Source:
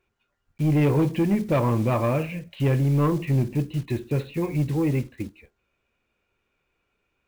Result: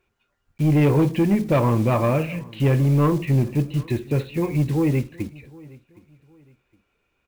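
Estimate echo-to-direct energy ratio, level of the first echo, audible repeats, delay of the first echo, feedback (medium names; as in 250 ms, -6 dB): -22.5 dB, -23.0 dB, 2, 765 ms, 32%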